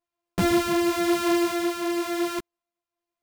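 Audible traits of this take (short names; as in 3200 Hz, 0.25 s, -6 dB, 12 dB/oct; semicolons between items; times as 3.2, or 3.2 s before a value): a buzz of ramps at a fixed pitch in blocks of 128 samples; tremolo triangle 0.97 Hz, depth 35%; a shimmering, thickened sound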